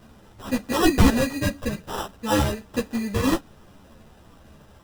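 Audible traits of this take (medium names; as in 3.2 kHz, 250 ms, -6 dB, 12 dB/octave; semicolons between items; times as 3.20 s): aliases and images of a low sample rate 2.2 kHz, jitter 0%; a shimmering, thickened sound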